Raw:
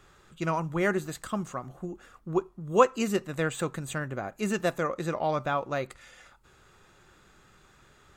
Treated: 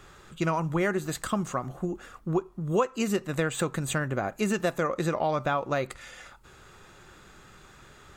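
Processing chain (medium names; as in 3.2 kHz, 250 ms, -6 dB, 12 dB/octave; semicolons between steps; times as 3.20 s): compression 4:1, threshold -30 dBFS, peak gain reduction 14 dB; trim +6.5 dB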